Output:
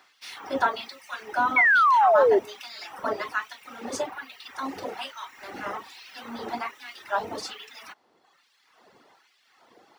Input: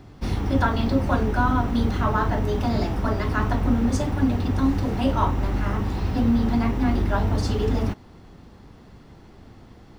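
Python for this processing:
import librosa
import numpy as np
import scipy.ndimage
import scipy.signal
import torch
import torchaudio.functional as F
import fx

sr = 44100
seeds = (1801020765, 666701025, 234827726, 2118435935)

y = fx.dereverb_blind(x, sr, rt60_s=1.1)
y = fx.filter_lfo_highpass(y, sr, shape='sine', hz=1.2, low_hz=450.0, high_hz=2600.0, q=1.1)
y = fx.spec_paint(y, sr, seeds[0], shape='fall', start_s=1.56, length_s=0.83, low_hz=370.0, high_hz=2300.0, level_db=-18.0)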